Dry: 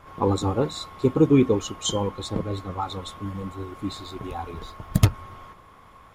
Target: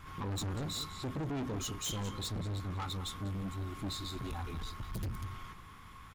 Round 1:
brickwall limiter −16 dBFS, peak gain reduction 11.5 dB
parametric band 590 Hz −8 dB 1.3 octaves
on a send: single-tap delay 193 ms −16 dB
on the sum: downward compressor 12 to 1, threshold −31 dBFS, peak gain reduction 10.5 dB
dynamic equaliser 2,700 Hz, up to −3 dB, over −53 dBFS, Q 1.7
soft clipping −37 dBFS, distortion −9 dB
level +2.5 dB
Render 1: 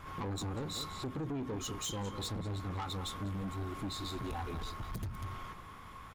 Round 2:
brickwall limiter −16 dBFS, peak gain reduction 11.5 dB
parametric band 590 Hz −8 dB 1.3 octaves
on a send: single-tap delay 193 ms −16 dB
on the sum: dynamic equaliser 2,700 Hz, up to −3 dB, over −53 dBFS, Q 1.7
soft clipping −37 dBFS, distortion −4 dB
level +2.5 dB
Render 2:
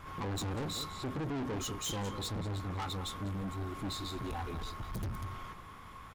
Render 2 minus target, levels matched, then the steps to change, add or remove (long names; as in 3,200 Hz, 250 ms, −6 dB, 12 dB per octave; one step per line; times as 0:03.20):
500 Hz band +2.5 dB
change: parametric band 590 Hz −18 dB 1.3 octaves